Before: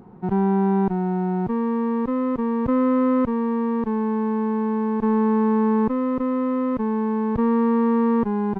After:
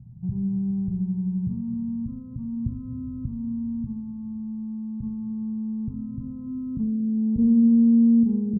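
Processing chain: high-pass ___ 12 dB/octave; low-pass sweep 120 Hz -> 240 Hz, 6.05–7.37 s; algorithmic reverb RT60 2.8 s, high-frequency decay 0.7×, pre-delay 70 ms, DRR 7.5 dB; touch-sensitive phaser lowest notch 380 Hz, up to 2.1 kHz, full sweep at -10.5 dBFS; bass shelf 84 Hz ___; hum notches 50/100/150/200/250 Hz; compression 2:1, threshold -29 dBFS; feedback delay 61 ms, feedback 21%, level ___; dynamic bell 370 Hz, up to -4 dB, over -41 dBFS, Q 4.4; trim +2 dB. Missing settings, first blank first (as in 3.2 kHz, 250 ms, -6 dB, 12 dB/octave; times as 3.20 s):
44 Hz, +11.5 dB, -8 dB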